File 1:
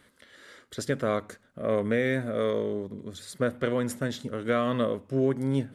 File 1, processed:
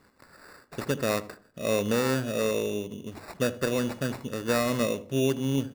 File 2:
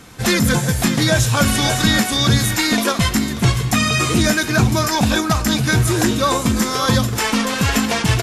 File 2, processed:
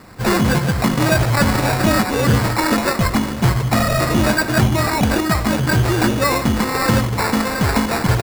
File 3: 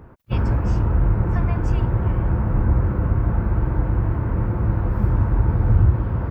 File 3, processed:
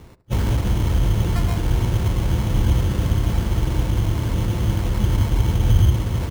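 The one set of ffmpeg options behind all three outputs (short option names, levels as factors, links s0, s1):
-filter_complex "[0:a]acrusher=samples=14:mix=1:aa=0.000001,asplit=2[s0][s1];[s1]adelay=77,lowpass=f=1000:p=1,volume=0.2,asplit=2[s2][s3];[s3]adelay=77,lowpass=f=1000:p=1,volume=0.42,asplit=2[s4][s5];[s5]adelay=77,lowpass=f=1000:p=1,volume=0.42,asplit=2[s6][s7];[s7]adelay=77,lowpass=f=1000:p=1,volume=0.42[s8];[s2][s4][s6][s8]amix=inputs=4:normalize=0[s9];[s0][s9]amix=inputs=2:normalize=0"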